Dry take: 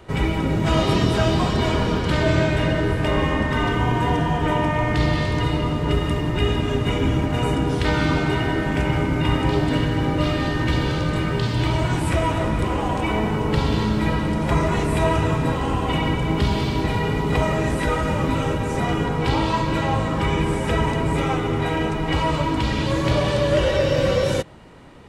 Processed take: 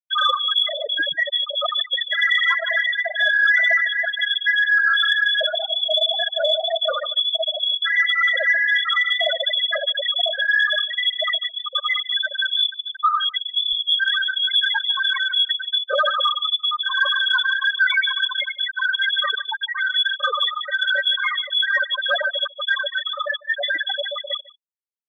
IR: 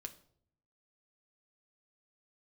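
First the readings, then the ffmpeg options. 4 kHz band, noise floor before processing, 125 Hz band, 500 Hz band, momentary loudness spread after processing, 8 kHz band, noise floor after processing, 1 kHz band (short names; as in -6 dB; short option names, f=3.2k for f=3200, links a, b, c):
+13.0 dB, -24 dBFS, under -40 dB, -7.0 dB, 6 LU, under -15 dB, -43 dBFS, -3.0 dB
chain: -filter_complex "[0:a]acontrast=66,bandreject=f=60:t=h:w=6,bandreject=f=120:t=h:w=6,bandreject=f=180:t=h:w=6,bandreject=f=240:t=h:w=6,bandreject=f=300:t=h:w=6,bandreject=f=360:t=h:w=6,bandreject=f=420:t=h:w=6,flanger=delay=17:depth=6.6:speed=2,acontrast=25,firequalizer=gain_entry='entry(210,0);entry(330,-24);entry(810,-10);entry(1500,14)':delay=0.05:min_phase=1,asoftclip=type=tanh:threshold=-10dB,adynamicequalizer=threshold=0.0141:dfrequency=960:dqfactor=3.6:tfrequency=960:tqfactor=3.6:attack=5:release=100:ratio=0.375:range=2.5:mode=cutabove:tftype=bell,asplit=2[a][b];[b]aecho=0:1:1097:0.211[c];[a][c]amix=inputs=2:normalize=0,afftfilt=real='re*gte(hypot(re,im),1)':imag='im*gte(hypot(re,im),1)':win_size=1024:overlap=0.75,asplit=2[d][e];[e]aecho=0:1:149:0.0891[f];[d][f]amix=inputs=2:normalize=0,lowpass=f=3k:t=q:w=0.5098,lowpass=f=3k:t=q:w=0.6013,lowpass=f=3k:t=q:w=0.9,lowpass=f=3k:t=q:w=2.563,afreqshift=-3500,aeval=exprs='0.596*(cos(1*acos(clip(val(0)/0.596,-1,1)))-cos(1*PI/2))+0.0106*(cos(5*acos(clip(val(0)/0.596,-1,1)))-cos(5*PI/2))':c=same"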